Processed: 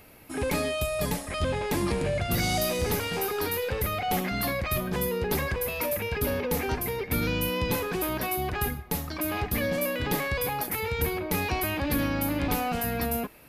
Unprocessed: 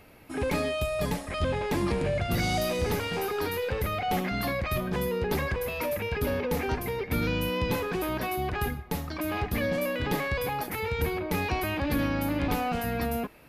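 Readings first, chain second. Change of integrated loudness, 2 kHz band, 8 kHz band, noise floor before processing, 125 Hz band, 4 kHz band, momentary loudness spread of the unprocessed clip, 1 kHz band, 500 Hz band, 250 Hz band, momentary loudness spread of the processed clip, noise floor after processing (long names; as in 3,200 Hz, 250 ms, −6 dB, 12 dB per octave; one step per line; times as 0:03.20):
+1.0 dB, +1.0 dB, +7.0 dB, −40 dBFS, 0.0 dB, +2.0 dB, 4 LU, 0.0 dB, 0.0 dB, 0.0 dB, 3 LU, −40 dBFS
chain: high-shelf EQ 6,500 Hz +10 dB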